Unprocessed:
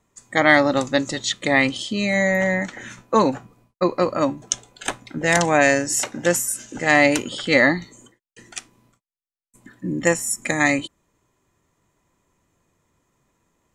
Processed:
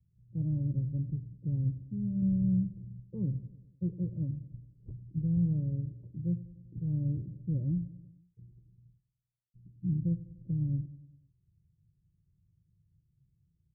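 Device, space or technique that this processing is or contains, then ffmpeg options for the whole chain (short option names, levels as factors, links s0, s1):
the neighbour's flat through the wall: -filter_complex "[0:a]highpass=f=120:p=1,lowpass=f=150:w=0.5412,lowpass=f=150:w=1.3066,equalizer=f=190:t=o:w=0.97:g=5,aecho=1:1:2.1:0.86,asettb=1/sr,asplit=3[s0][s1][s2];[s0]atrim=end=2.224[s3];[s1]atrim=start=2.22:end=2.82,asetpts=PTS-STARTPTS,afade=t=in:d=0.004:c=qsin,afade=t=out:st=0.596:d=0.004:c=qsin,lowshelf=f=280:g=6[s4];[s2]atrim=start=2.816[s5];[s3][s4]acrossfade=d=0.004:c1=hsin:c2=qsin[s6];[s6][s5]acrossfade=d=0.004:c1=qsin:c2=hsin,aecho=1:1:98|196|294|392|490:0.15|0.0853|0.0486|0.0277|0.0158,volume=1.58"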